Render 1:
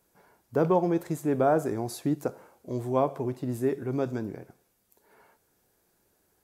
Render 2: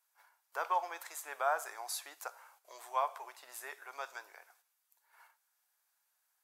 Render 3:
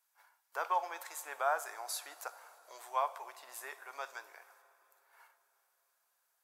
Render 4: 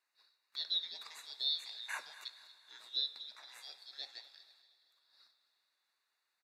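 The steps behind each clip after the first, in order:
gate -59 dBFS, range -8 dB; inverse Chebyshev high-pass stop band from 200 Hz, stop band 70 dB; trim +1 dB
plate-style reverb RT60 4.7 s, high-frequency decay 0.8×, DRR 17.5 dB
four frequency bands reordered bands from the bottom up 3412; band-pass filter 1.4 kHz, Q 1.1; feedback delay 236 ms, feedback 41%, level -17 dB; trim +5.5 dB

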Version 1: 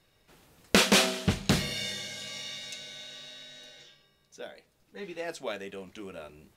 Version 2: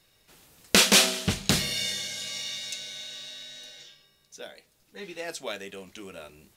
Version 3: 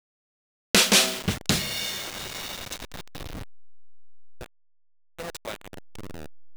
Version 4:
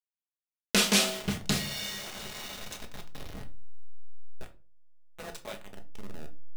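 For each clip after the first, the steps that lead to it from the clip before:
treble shelf 2.8 kHz +9.5 dB; trim -1 dB
send-on-delta sampling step -29 dBFS
reverberation RT60 0.35 s, pre-delay 5 ms, DRR 4 dB; trim -7 dB

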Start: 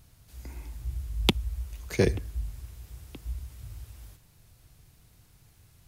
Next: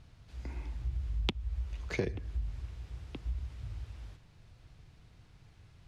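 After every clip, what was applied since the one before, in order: low-pass 3.9 kHz 12 dB/octave; compression 6:1, threshold -31 dBFS, peak gain reduction 13 dB; trim +1 dB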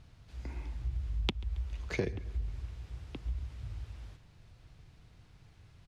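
feedback delay 137 ms, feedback 56%, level -23 dB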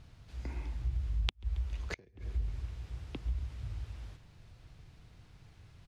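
inverted gate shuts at -26 dBFS, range -29 dB; trim +1.5 dB

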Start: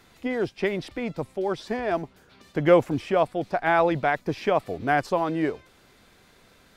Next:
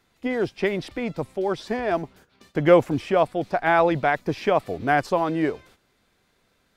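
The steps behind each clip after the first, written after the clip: gate -52 dBFS, range -12 dB; trim +2 dB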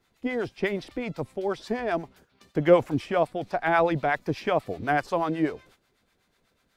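harmonic tremolo 8.1 Hz, depth 70%, crossover 690 Hz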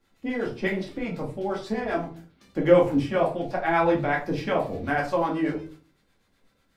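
simulated room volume 210 m³, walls furnished, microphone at 2.3 m; trim -4 dB

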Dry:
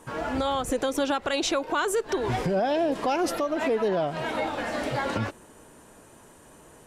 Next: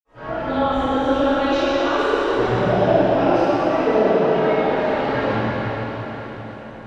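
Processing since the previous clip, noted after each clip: distance through air 240 m; reverberation RT60 4.9 s, pre-delay 50 ms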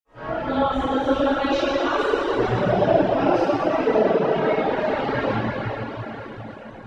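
reverb removal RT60 0.89 s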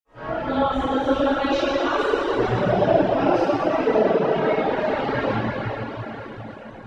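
no audible change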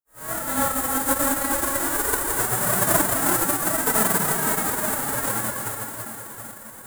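formants flattened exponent 0.1; high-order bell 3.7 kHz -15.5 dB

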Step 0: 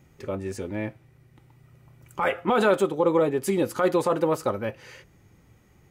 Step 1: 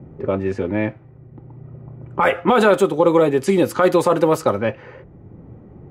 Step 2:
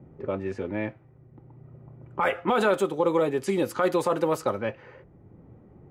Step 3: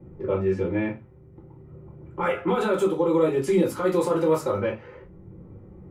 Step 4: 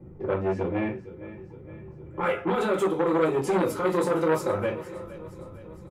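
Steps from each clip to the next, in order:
level-controlled noise filter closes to 550 Hz, open at -20.5 dBFS; three bands compressed up and down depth 40%; trim +7.5 dB
bass shelf 390 Hz -3 dB; trim -7.5 dB
peak limiter -18.5 dBFS, peak gain reduction 7.5 dB; reverberation RT60 0.25 s, pre-delay 3 ms, DRR -6.5 dB; trim -5 dB
feedback delay 463 ms, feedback 57%, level -16.5 dB; transformer saturation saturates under 890 Hz

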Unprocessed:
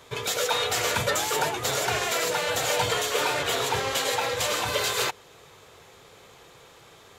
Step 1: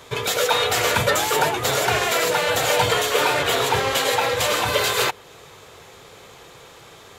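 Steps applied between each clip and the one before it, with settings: dynamic bell 6.3 kHz, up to -4 dB, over -44 dBFS, Q 0.98; trim +6.5 dB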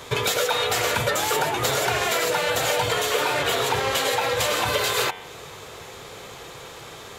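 de-hum 91.42 Hz, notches 39; compression, threshold -25 dBFS, peak gain reduction 10.5 dB; trim +5 dB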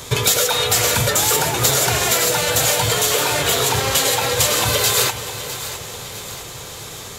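tone controls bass +8 dB, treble +11 dB; two-band feedback delay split 720 Hz, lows 473 ms, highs 657 ms, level -12.5 dB; trim +1.5 dB

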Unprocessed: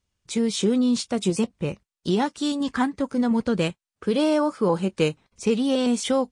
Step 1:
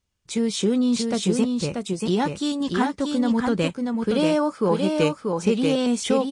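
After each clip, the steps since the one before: delay 635 ms -4 dB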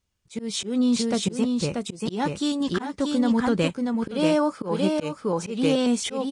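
slow attack 174 ms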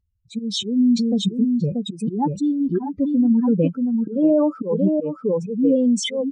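spectral contrast enhancement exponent 2.8; trim +5 dB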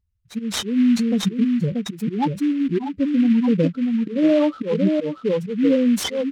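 delay time shaken by noise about 2.1 kHz, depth 0.031 ms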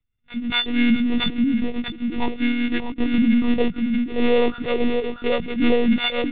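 partials quantised in pitch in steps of 4 st; monotone LPC vocoder at 8 kHz 240 Hz

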